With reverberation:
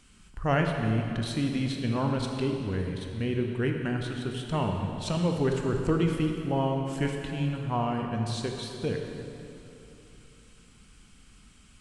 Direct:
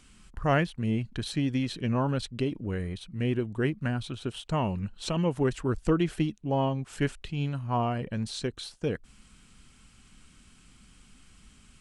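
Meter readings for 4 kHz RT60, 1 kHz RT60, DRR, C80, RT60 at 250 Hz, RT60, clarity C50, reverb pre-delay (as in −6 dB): 2.4 s, 3.0 s, 2.0 dB, 4.0 dB, 3.1 s, 3.0 s, 3.0 dB, 14 ms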